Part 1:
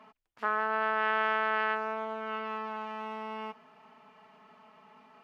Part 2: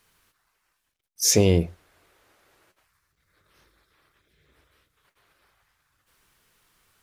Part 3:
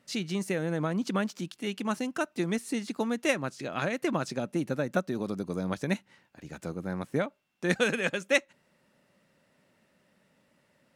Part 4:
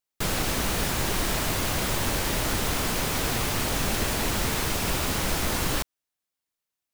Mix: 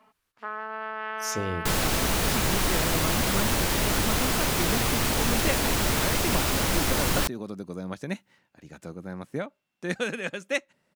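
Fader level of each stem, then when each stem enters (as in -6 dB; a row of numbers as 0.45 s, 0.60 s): -5.0 dB, -13.0 dB, -3.0 dB, +1.5 dB; 0.00 s, 0.00 s, 2.20 s, 1.45 s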